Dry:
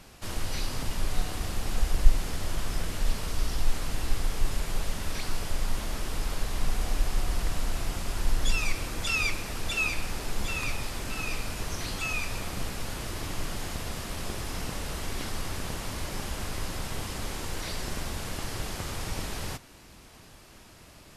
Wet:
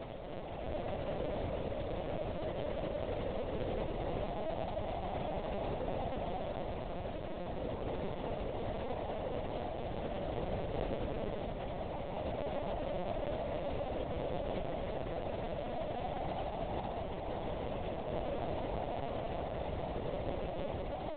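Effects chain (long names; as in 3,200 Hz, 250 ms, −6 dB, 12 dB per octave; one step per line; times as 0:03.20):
elliptic band-pass filter 340–800 Hz, stop band 50 dB
high-frequency loss of the air 110 metres
backwards echo 1,144 ms −11 dB
on a send at −4.5 dB: convolution reverb RT60 1.4 s, pre-delay 77 ms
on the sum: extreme stretch with random phases 27×, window 0.10 s, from 0:05.03
automatic gain control gain up to 5.5 dB
log-companded quantiser 4 bits
linear-prediction vocoder at 8 kHz pitch kept
level +1 dB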